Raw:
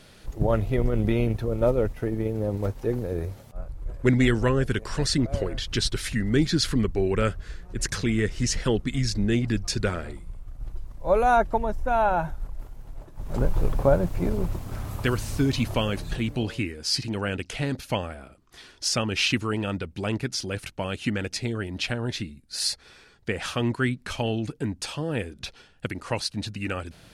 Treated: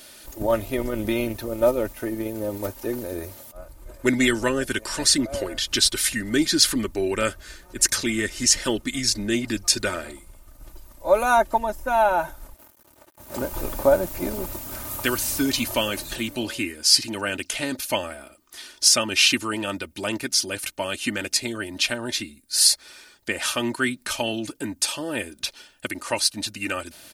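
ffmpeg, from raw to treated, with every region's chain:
-filter_complex "[0:a]asettb=1/sr,asplit=3[a][b][c];[a]atrim=end=12.544[d];[b]atrim=start=12.54:end=13.53,asetpts=PTS-STARTPTS,afade=t=in:d=0.004:c=qsin,afade=t=out:st=0.986:d=0.004:c=qsin,highpass=f=57:w=0.5412,highpass=f=57:w=1.3066,aeval=exprs='sgn(val(0))*max(abs(val(0))-0.00376,0)':c=same[e];[c]atrim=start=13.526[f];[d][e]acrossfade=d=0.004:c1=hsin:c2=qsin[g];[g][f]acrossfade=d=0.004:c1=qsin:c2=hsin,aemphasis=mode=production:type=bsi,aecho=1:1:3.3:0.58,volume=2dB"

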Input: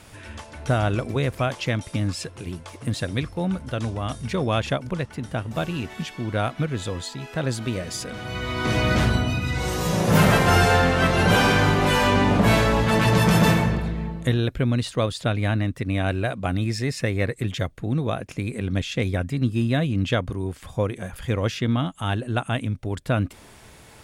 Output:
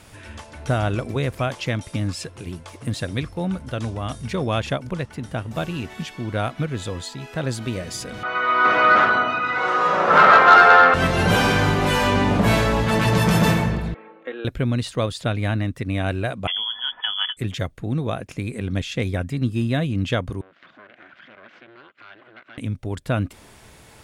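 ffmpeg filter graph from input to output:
-filter_complex "[0:a]asettb=1/sr,asplit=3[a][b][c];[a]atrim=end=8.234[d];[b]atrim=start=8.23:end=10.94,asetpts=PTS-STARTPTS,afade=t=in:d=0.004:c=qsin,afade=t=out:st=2.706:d=0.004:c=qsin,highpass=530,lowpass=2.1k,equalizer=f=1.3k:t=o:w=0.41:g=13,acontrast=80[e];[c]atrim=start=10.936[f];[d][e]acrossfade=d=0.004:c1=hsin:c2=qsin[g];[g][f]acrossfade=d=0.004:c1=qsin:c2=hsin,asettb=1/sr,asplit=3[h][i][j];[h]atrim=end=13.944[k];[i]atrim=start=13.94:end=14.45,asetpts=PTS-STARTPTS,afade=t=in:d=0.004:c=qsin,afade=t=out:st=0.506:d=0.004:c=qsin,highpass=f=410:w=0.5412,highpass=f=410:w=1.3066,equalizer=f=620:t=q:w=4:g=-8,equalizer=f=960:t=q:w=4:g=-9,equalizer=f=1.9k:t=q:w=4:g=-6,lowpass=f=2.3k:w=0.5412,lowpass=f=2.3k:w=1.3066,aecho=1:1:3.7:0.49,atrim=end_sample=22491[l];[j]atrim=start=14.446[m];[k][l]acrossfade=d=0.004:c1=hsin:c2=qsin[n];[n][m]acrossfade=d=0.004:c1=qsin:c2=hsin,asettb=1/sr,asplit=3[o][p][q];[o]atrim=end=16.474[r];[p]atrim=start=16.47:end=17.37,asetpts=PTS-STARTPTS,afade=t=in:d=0.004:c=qsin,afade=t=out:st=0.896:d=0.004:c=qsin,aecho=1:1:4:0.46,atrim=end_sample=39690,tremolo=f=230:d=0.4,lowpass=f=3k:t=q:w=0.5098,lowpass=f=3k:t=q:w=0.6013,lowpass=f=3k:t=q:w=0.9,lowpass=f=3k:t=q:w=2.563,afreqshift=-3500[s];[q]atrim=start=17.366[t];[r][s]acrossfade=d=0.004:c1=hsin:c2=qsin[u];[u][t]acrossfade=d=0.004:c1=qsin:c2=hsin,asettb=1/sr,asplit=3[v][w][x];[v]atrim=end=20.414[y];[w]atrim=start=20.41:end=22.58,asetpts=PTS-STARTPTS,afade=t=in:d=0.004:c=qsin,afade=t=out:st=2.166:d=0.004:c=qsin,acompressor=threshold=-38dB:ratio=4:attack=3.2:release=140:knee=1:detection=peak,aeval=exprs='abs(val(0))':c=same,highpass=310,equalizer=f=450:t=q:w=4:g=-9,equalizer=f=870:t=q:w=4:g=-8,equalizer=f=1.5k:t=q:w=4:g=8,equalizer=f=2.1k:t=q:w=4:g=3,lowpass=f=3.4k:w=0.5412,lowpass=f=3.4k:w=1.3066[z];[x]atrim=start=22.576[aa];[y][z]acrossfade=d=0.004:c1=hsin:c2=qsin[ab];[ab][aa]acrossfade=d=0.004:c1=qsin:c2=hsin"

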